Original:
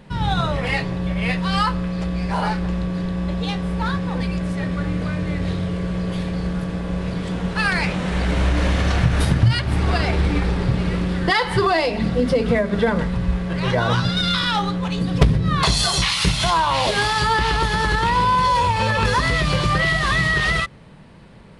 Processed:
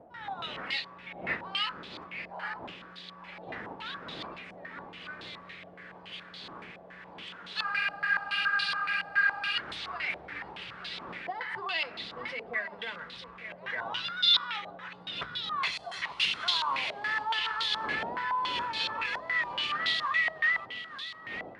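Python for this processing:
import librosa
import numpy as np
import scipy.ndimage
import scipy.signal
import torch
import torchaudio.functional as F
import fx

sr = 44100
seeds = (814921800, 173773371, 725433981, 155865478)

y = fx.dmg_wind(x, sr, seeds[0], corner_hz=260.0, level_db=-20.0)
y = np.diff(y, prepend=0.0)
y = y + 10.0 ** (-11.5 / 20.0) * np.pad(y, (int(894 * sr / 1000.0), 0))[:len(y)]
y = fx.spec_freeze(y, sr, seeds[1], at_s=7.66, hold_s=1.89)
y = fx.filter_held_lowpass(y, sr, hz=7.1, low_hz=700.0, high_hz=3700.0)
y = y * 10.0 ** (-3.0 / 20.0)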